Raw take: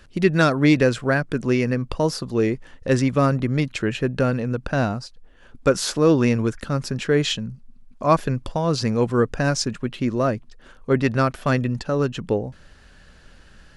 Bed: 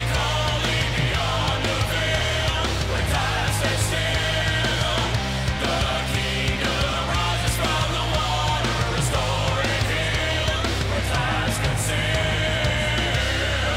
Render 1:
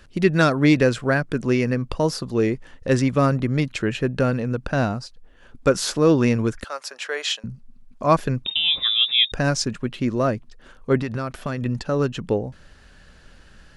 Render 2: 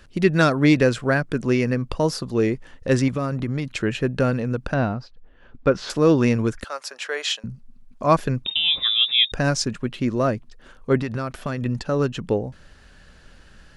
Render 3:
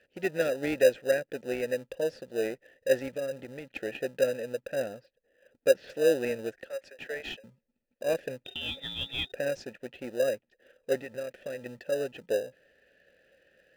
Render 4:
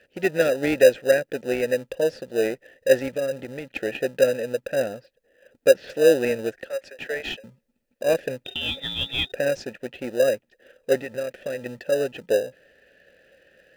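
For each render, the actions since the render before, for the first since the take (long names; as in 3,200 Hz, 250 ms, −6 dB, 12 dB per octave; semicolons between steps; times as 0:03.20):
0:06.64–0:07.44: high-pass filter 590 Hz 24 dB per octave; 0:08.45–0:09.32: voice inversion scrambler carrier 3,700 Hz; 0:11.01–0:11.66: downward compressor 12 to 1, threshold −21 dBFS
0:03.08–0:03.71: downward compressor, threshold −20 dBFS; 0:04.74–0:05.90: high-frequency loss of the air 220 metres
formant filter e; in parallel at −8 dB: decimation without filtering 40×
level +7.5 dB; brickwall limiter −3 dBFS, peak gain reduction 1 dB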